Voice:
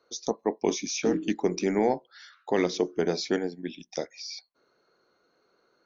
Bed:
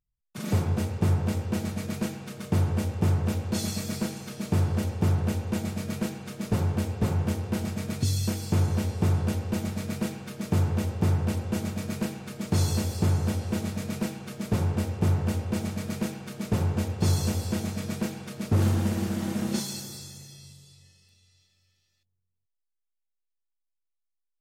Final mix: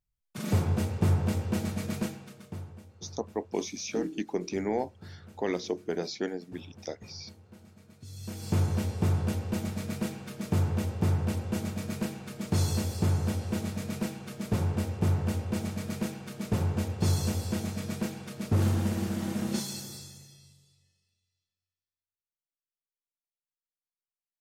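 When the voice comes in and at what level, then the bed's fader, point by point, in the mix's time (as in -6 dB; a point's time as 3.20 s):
2.90 s, -5.5 dB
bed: 1.99 s -1 dB
2.87 s -23.5 dB
8.00 s -23.5 dB
8.49 s -2.5 dB
19.96 s -2.5 dB
22.31 s -32 dB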